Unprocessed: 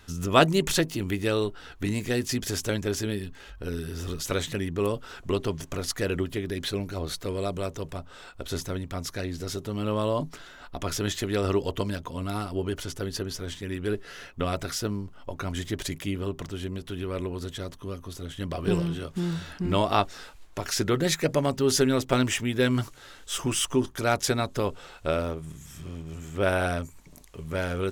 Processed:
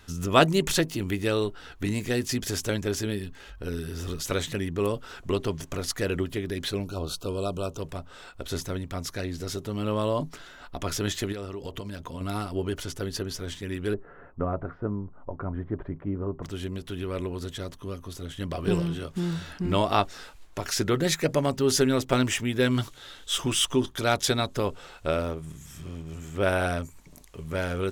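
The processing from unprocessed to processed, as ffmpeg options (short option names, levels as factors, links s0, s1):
-filter_complex "[0:a]asettb=1/sr,asplit=3[s0][s1][s2];[s0]atrim=end=6.844[s3];[s1]atrim=start=6.84:end=7.78,asetpts=PTS-STARTPTS,afade=t=in:d=0.004:c=qsin,afade=t=out:st=0.936:d=0.004:c=qsin,asuperstop=centerf=1900:order=12:qfactor=2[s4];[s2]atrim=start=7.776[s5];[s3][s4]acrossfade=d=0.004:c1=hsin:c2=qsin[s6];[s6][s5]acrossfade=d=0.004:c1=qsin:c2=hsin,asettb=1/sr,asplit=3[s7][s8][s9];[s7]atrim=end=11.324[s10];[s8]atrim=start=11.32:end=12.21,asetpts=PTS-STARTPTS,afade=t=in:d=0.004:c=qsin,afade=t=out:st=0.886:d=0.004:c=qsin,acompressor=threshold=0.0282:ratio=12:attack=3.2:release=140:knee=1:detection=peak[s11];[s9]atrim=start=12.206[s12];[s10][s11]acrossfade=d=0.004:c1=hsin:c2=qsin[s13];[s13][s12]acrossfade=d=0.004:c1=qsin:c2=hsin,asettb=1/sr,asplit=3[s14][s15][s16];[s14]atrim=end=13.944[s17];[s15]atrim=start=13.94:end=16.43,asetpts=PTS-STARTPTS,afade=t=in:d=0.004:c=qsin,afade=t=out:st=2.486:d=0.004:c=qsin,lowpass=f=1300:w=0.5412,lowpass=f=1300:w=1.3066[s18];[s16]atrim=start=16.426[s19];[s17][s18]acrossfade=d=0.004:c1=hsin:c2=qsin[s20];[s20][s19]acrossfade=d=0.004:c1=qsin:c2=hsin,asettb=1/sr,asplit=3[s21][s22][s23];[s21]atrim=end=22.714[s24];[s22]atrim=start=22.71:end=24.47,asetpts=PTS-STARTPTS,afade=t=in:d=0.004:c=qsin,afade=t=out:st=1.756:d=0.004:c=qsin,equalizer=f=3500:w=3.5:g=8.5[s25];[s23]atrim=start=24.466[s26];[s24][s25]acrossfade=d=0.004:c1=hsin:c2=qsin[s27];[s27][s26]acrossfade=d=0.004:c1=qsin:c2=hsin"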